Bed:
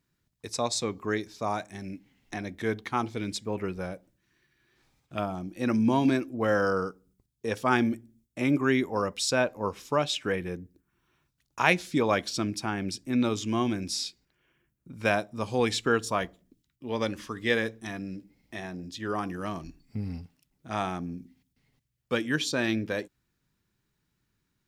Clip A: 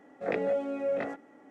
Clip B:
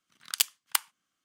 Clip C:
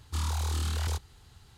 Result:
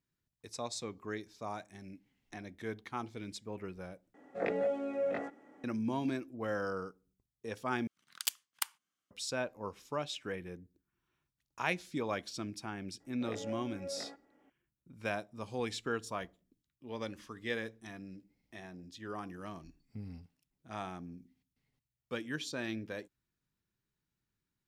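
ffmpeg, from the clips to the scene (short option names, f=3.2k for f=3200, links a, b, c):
-filter_complex "[1:a]asplit=2[a][b];[0:a]volume=-11dB,asplit=3[c][d][e];[c]atrim=end=4.144[f];[a]atrim=end=1.5,asetpts=PTS-STARTPTS,volume=-3.5dB[g];[d]atrim=start=5.636:end=7.874[h];[2:a]atrim=end=1.24,asetpts=PTS-STARTPTS,volume=-9dB[i];[e]atrim=start=9.106[j];[b]atrim=end=1.5,asetpts=PTS-STARTPTS,volume=-13dB,afade=t=in:d=0.004:c=hsin,afade=t=out:st=1.496:d=0.004:c=hsin,adelay=573300S[k];[f][g]acrossfade=d=0.004:c1=hsin:c2=hsin[l];[l][h]acrossfade=d=0.004:c1=hsin:c2=hsin[m];[m][i]acrossfade=d=0.004:c1=hsin:c2=hsin[n];[n][j]acrossfade=d=0.004:c1=hsin:c2=hsin[o];[o][k]amix=inputs=2:normalize=0"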